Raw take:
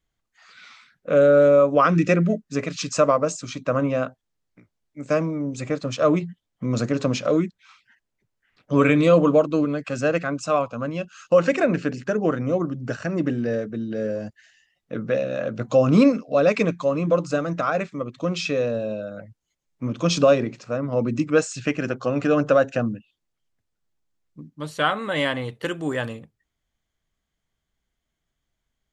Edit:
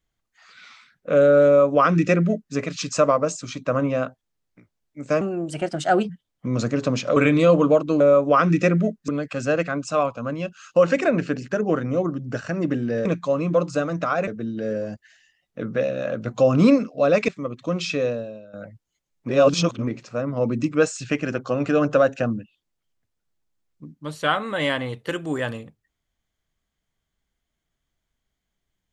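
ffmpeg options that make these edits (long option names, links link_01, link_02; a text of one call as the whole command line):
ffmpeg -i in.wav -filter_complex "[0:a]asplit=12[link_01][link_02][link_03][link_04][link_05][link_06][link_07][link_08][link_09][link_10][link_11][link_12];[link_01]atrim=end=5.214[link_13];[link_02]atrim=start=5.21:end=6.27,asetpts=PTS-STARTPTS,asetrate=52920,aresample=44100[link_14];[link_03]atrim=start=6.266:end=7.342[link_15];[link_04]atrim=start=8.798:end=9.642[link_16];[link_05]atrim=start=1.458:end=2.542[link_17];[link_06]atrim=start=9.638:end=13.612[link_18];[link_07]atrim=start=16.618:end=17.842[link_19];[link_08]atrim=start=13.608:end=16.622[link_20];[link_09]atrim=start=17.838:end=19.09,asetpts=PTS-STARTPTS,afade=type=out:start_time=0.792:duration=0.46:curve=qua:silence=0.177828[link_21];[link_10]atrim=start=19.09:end=19.842,asetpts=PTS-STARTPTS,afade=type=in:duration=0.004:curve=hsin:silence=0.177828[link_22];[link_11]atrim=start=19.838:end=20.432,asetpts=PTS-STARTPTS,areverse[link_23];[link_12]atrim=start=20.428[link_24];[link_13][link_14]acrossfade=duration=0.004:curve1=hsin:curve2=hsin[link_25];[link_25][link_15]acrossfade=duration=0.004:curve1=hsin:curve2=hsin[link_26];[link_26][link_16]acrossfade=duration=0.004:curve1=hsin:curve2=hsin[link_27];[link_27][link_17]acrossfade=duration=0.004:curve1=hsin:curve2=hsin[link_28];[link_28][link_18]acrossfade=duration=0.004:curve1=hsin:curve2=hsin[link_29];[link_29][link_19]acrossfade=duration=0.004:curve1=hsin:curve2=hsin[link_30];[link_30][link_20]acrossfade=duration=0.004:curve1=hsin:curve2=hsin[link_31];[link_21][link_22]concat=n=2:v=0:a=1[link_32];[link_31][link_32]acrossfade=duration=0.004:curve1=hsin:curve2=hsin[link_33];[link_33][link_23]acrossfade=duration=0.004:curve1=hsin:curve2=hsin[link_34];[link_34][link_24]acrossfade=duration=0.004:curve1=hsin:curve2=hsin" out.wav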